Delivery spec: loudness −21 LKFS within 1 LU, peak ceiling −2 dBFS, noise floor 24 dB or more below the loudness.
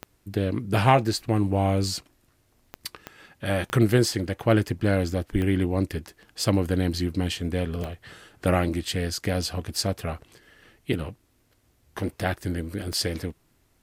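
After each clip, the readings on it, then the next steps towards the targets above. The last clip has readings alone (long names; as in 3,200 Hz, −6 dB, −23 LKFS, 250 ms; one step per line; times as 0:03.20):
number of clicks 7; integrated loudness −26.0 LKFS; sample peak −3.0 dBFS; target loudness −21.0 LKFS
→ click removal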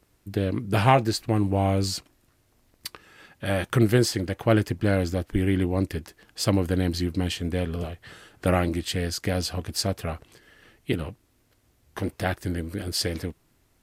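number of clicks 0; integrated loudness −26.0 LKFS; sample peak −3.0 dBFS; target loudness −21.0 LKFS
→ level +5 dB
brickwall limiter −2 dBFS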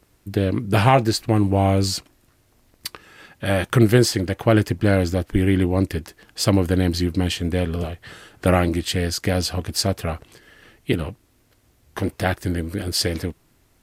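integrated loudness −21.0 LKFS; sample peak −2.0 dBFS; background noise floor −61 dBFS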